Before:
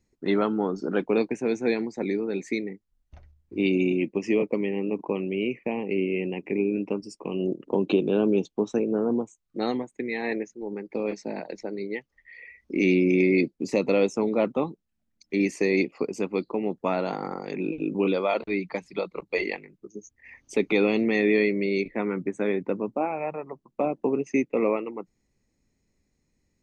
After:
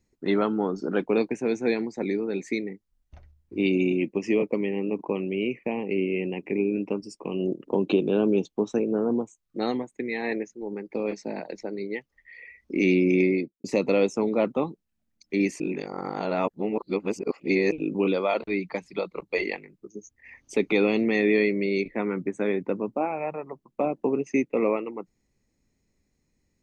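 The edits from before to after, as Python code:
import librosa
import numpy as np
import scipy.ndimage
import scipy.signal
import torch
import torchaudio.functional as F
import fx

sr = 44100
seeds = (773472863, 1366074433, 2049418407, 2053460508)

y = fx.studio_fade_out(x, sr, start_s=13.18, length_s=0.46)
y = fx.edit(y, sr, fx.reverse_span(start_s=15.6, length_s=2.12), tone=tone)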